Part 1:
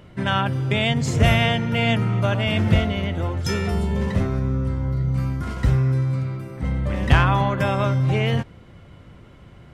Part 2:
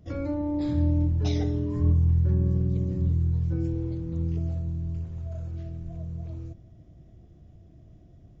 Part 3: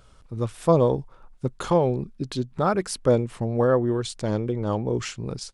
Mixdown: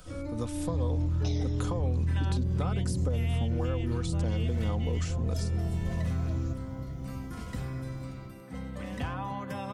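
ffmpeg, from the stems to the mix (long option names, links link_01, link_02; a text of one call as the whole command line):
ffmpeg -i stem1.wav -i stem2.wav -i stem3.wav -filter_complex "[0:a]highpass=frequency=78:width=0.5412,highpass=frequency=78:width=1.3066,adelay=1900,volume=-12dB[link_01];[1:a]dynaudnorm=framelen=450:gausssize=3:maxgain=15dB,asoftclip=type=tanh:threshold=-6dB,volume=-7dB[link_02];[2:a]volume=1dB[link_03];[link_01][link_03]amix=inputs=2:normalize=0,aecho=1:1:4:0.53,acompressor=threshold=-21dB:ratio=6,volume=0dB[link_04];[link_02][link_04]amix=inputs=2:normalize=0,highshelf=frequency=5000:gain=9.5,acrossover=split=130|1000[link_05][link_06][link_07];[link_05]acompressor=threshold=-29dB:ratio=4[link_08];[link_06]acompressor=threshold=-35dB:ratio=4[link_09];[link_07]acompressor=threshold=-45dB:ratio=4[link_10];[link_08][link_09][link_10]amix=inputs=3:normalize=0" out.wav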